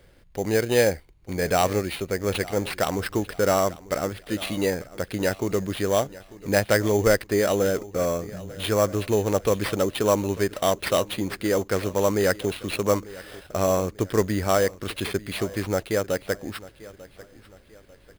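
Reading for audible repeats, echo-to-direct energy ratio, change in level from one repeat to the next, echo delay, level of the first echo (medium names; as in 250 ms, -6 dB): 2, -18.5 dB, -8.0 dB, 894 ms, -19.0 dB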